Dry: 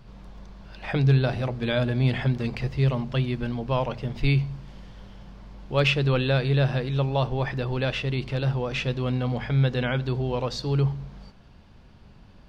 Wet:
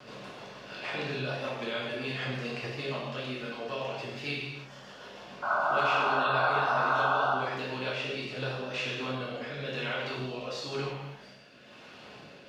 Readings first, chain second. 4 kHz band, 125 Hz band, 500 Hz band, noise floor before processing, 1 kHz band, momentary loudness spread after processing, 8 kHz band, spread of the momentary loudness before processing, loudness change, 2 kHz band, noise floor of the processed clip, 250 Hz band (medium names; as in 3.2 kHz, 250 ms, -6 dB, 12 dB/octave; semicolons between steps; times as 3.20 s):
-3.5 dB, -18.0 dB, -5.0 dB, -50 dBFS, +5.0 dB, 19 LU, no reading, 6 LU, -6.0 dB, +0.5 dB, -51 dBFS, -11.0 dB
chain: spectral levelling over time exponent 0.6; high-pass 180 Hz 12 dB/octave; reverb removal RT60 2 s; bass shelf 420 Hz -6 dB; hum notches 60/120/180/240 Hz; compression 2.5:1, threshold -29 dBFS, peak gain reduction 8 dB; rotary cabinet horn 6.7 Hz, later 1 Hz, at 7.89 s; wow and flutter 50 cents; painted sound noise, 5.42–7.31 s, 570–1600 Hz -28 dBFS; gated-style reverb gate 370 ms falling, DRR -7 dB; trim -7 dB